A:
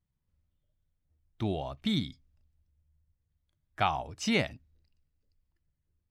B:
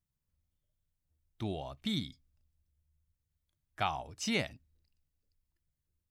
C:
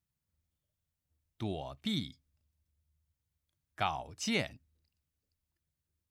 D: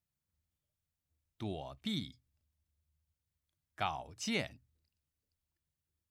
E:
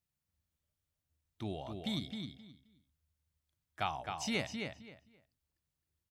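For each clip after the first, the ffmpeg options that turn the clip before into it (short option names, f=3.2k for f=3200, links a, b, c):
-af "highshelf=f=4.9k:g=8,volume=-5.5dB"
-af "highpass=57"
-af "bandreject=f=60:t=h:w=6,bandreject=f=120:t=h:w=6,volume=-3dB"
-filter_complex "[0:a]asplit=2[a][b];[b]adelay=263,lowpass=f=4.3k:p=1,volume=-5dB,asplit=2[c][d];[d]adelay=263,lowpass=f=4.3k:p=1,volume=0.22,asplit=2[e][f];[f]adelay=263,lowpass=f=4.3k:p=1,volume=0.22[g];[a][c][e][g]amix=inputs=4:normalize=0"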